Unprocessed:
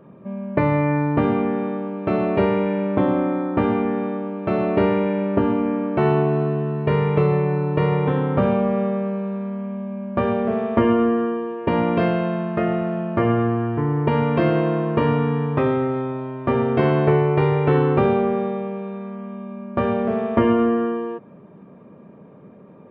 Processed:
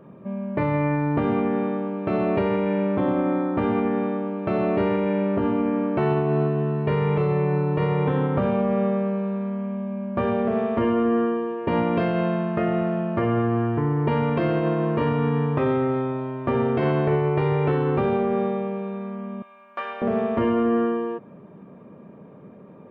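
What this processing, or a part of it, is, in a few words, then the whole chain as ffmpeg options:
soft clipper into limiter: -filter_complex "[0:a]asettb=1/sr,asplit=3[a][b][c];[a]atrim=end=19.424[d];[b]atrim=start=19.42:end=20.02,asetpts=PTS-STARTPTS,afade=t=in:d=0.004:c=qsin,afade=t=out:st=0.596:d=0.004:c=qsin,highpass=1.2k[e];[c]atrim=start=20.016[f];[d][e]acrossfade=d=0.004:c1=hsin:c2=qsin[g];[g][f]acrossfade=d=0.004:c1=qsin:c2=hsin,asoftclip=type=tanh:threshold=-5.5dB,alimiter=limit=-14dB:level=0:latency=1:release=78"

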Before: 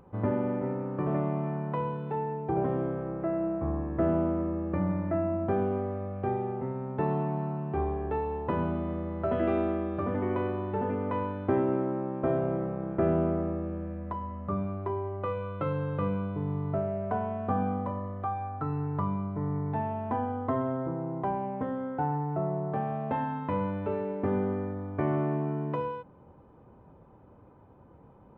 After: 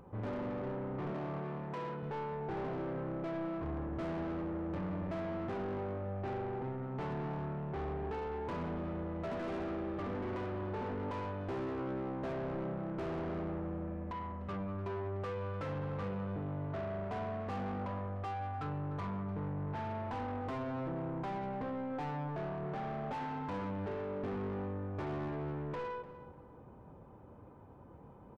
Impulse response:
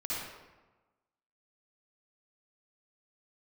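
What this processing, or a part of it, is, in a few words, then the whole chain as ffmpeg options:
saturation between pre-emphasis and de-emphasis: -filter_complex "[0:a]highshelf=f=2.1k:g=10,asoftclip=type=tanh:threshold=-36dB,highshelf=f=2.1k:g=-10,asettb=1/sr,asplit=3[a][b][c];[a]atrim=end=1.114[d];[b]atrim=start=1.11:end=2.03,asetpts=PTS-STARTPTS,afade=t=in:d=0.004:c=qsin,afade=t=out:st=0.916:d=0.004:c=qsin,highpass=140[e];[c]atrim=start=2.026[f];[d][e]acrossfade=d=0.004:c1=hsin:c2=qsin[g];[g][f]acrossfade=d=0.004:c1=qsin:c2=hsin,asplit=2[h][i];[i]adelay=298,lowpass=f=2.2k:p=1,volume=-13dB,asplit=2[j][k];[k]adelay=298,lowpass=f=2.2k:p=1,volume=0.33,asplit=2[l][m];[m]adelay=298,lowpass=f=2.2k:p=1,volume=0.33[n];[h][j][l][n]amix=inputs=4:normalize=0"

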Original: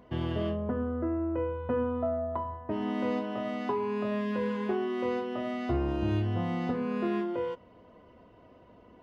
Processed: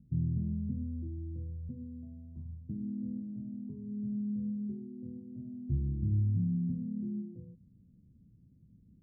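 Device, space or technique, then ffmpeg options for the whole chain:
the neighbour's flat through the wall: -filter_complex "[0:a]lowpass=f=200:w=0.5412,lowpass=f=200:w=1.3066,equalizer=f=150:t=o:w=0.86:g=8,asettb=1/sr,asplit=3[a][b][c];[a]atrim=end=1.694[d];[b]atrim=start=1.69:end=2.37,asetpts=PTS-STARTPTS,afade=t=in:d=0.004:c=qsin,afade=t=out:st=0.676:d=0.004:c=qsin,lowshelf=f=210:g=-8.5[e];[c]atrim=start=2.366[f];[d][e]acrossfade=d=0.004:c1=hsin:c2=qsin[g];[g][f]acrossfade=d=0.004:c1=qsin:c2=hsin,volume=-1.5dB"

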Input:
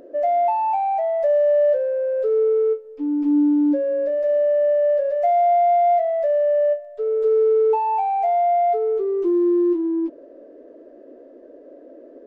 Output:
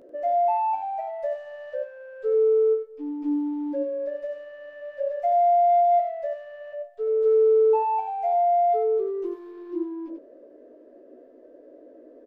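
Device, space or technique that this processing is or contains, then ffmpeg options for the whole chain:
slapback doubling: -filter_complex "[0:a]asplit=3[a][b][c];[b]adelay=16,volume=-4dB[d];[c]adelay=93,volume=-5dB[e];[a][d][e]amix=inputs=3:normalize=0,volume=-7.5dB"

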